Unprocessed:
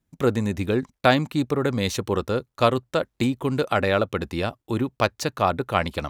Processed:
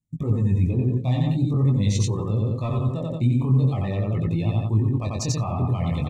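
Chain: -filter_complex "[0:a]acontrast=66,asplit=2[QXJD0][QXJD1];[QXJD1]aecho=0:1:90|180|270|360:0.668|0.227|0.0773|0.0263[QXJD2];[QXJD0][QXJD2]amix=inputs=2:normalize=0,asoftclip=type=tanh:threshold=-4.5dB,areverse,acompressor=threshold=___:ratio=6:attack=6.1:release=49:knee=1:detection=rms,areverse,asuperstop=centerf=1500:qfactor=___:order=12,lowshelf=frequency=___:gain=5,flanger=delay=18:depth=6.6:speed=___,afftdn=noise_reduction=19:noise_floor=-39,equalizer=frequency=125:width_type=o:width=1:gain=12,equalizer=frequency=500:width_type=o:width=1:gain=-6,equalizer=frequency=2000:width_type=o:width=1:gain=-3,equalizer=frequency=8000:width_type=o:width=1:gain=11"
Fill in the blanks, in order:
-25dB, 3.3, 340, 0.45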